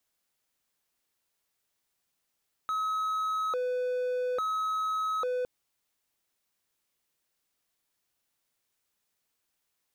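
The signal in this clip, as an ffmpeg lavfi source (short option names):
-f lavfi -i "aevalsrc='0.0531*(1-4*abs(mod((890*t+390/0.59*(0.5-abs(mod(0.59*t,1)-0.5)))+0.25,1)-0.5))':d=2.76:s=44100"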